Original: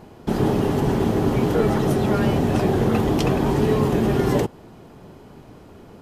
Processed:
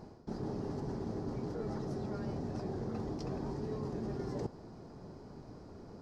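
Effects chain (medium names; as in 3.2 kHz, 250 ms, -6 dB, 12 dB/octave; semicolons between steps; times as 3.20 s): resonant high shelf 3.9 kHz +8.5 dB, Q 3; reverse; compression 10:1, threshold -29 dBFS, peak gain reduction 15.5 dB; reverse; tape spacing loss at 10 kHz 24 dB; trim -5.5 dB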